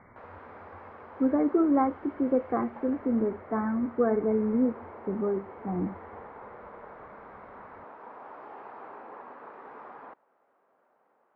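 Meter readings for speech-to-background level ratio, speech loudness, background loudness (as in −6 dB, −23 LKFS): 19.0 dB, −28.0 LKFS, −47.0 LKFS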